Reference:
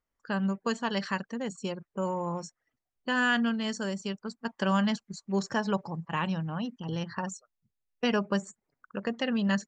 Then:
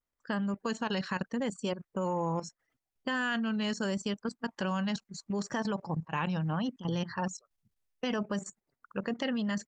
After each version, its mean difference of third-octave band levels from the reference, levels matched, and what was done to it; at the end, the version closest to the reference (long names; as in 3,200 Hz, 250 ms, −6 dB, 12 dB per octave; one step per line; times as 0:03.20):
3.0 dB: brickwall limiter −23 dBFS, peak gain reduction 8 dB
pitch vibrato 0.77 Hz 68 cents
output level in coarse steps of 12 dB
level +5 dB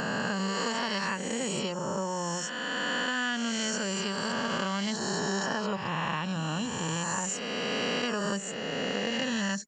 11.5 dB: peak hold with a rise ahead of every peak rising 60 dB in 2.64 s
high-shelf EQ 3,800 Hz +8.5 dB
downward compressor, threshold −27 dBFS, peak gain reduction 8.5 dB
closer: first